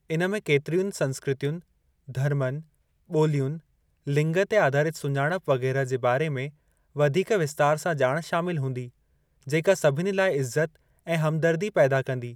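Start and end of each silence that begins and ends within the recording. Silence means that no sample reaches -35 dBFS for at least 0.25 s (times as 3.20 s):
1.58–2.09 s
2.60–3.11 s
3.58–4.07 s
6.49–6.96 s
8.88–9.47 s
10.66–11.07 s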